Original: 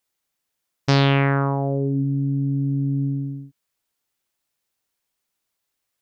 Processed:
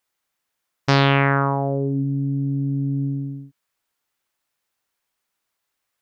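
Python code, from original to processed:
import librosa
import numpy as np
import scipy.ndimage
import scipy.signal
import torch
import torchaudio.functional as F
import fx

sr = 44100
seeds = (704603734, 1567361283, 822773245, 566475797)

y = fx.peak_eq(x, sr, hz=1300.0, db=6.0, octaves=2.2)
y = F.gain(torch.from_numpy(y), -1.0).numpy()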